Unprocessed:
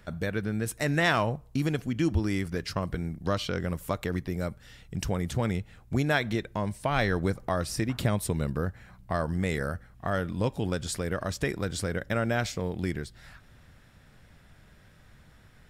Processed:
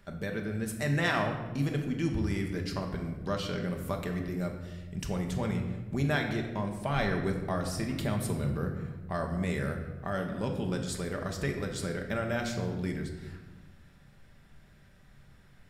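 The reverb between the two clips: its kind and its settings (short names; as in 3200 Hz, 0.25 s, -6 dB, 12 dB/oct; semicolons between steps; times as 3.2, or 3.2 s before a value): shoebox room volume 840 m³, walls mixed, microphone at 1.2 m; gain -5.5 dB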